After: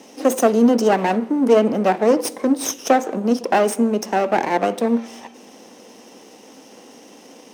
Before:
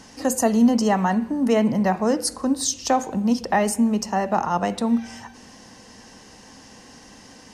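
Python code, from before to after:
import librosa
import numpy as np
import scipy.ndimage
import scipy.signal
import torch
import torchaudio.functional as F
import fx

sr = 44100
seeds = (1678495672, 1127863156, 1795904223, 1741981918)

y = fx.lower_of_two(x, sr, delay_ms=0.34)
y = scipy.signal.sosfilt(scipy.signal.butter(2, 300.0, 'highpass', fs=sr, output='sos'), y)
y = fx.peak_eq(y, sr, hz=400.0, db=9.5, octaves=2.5)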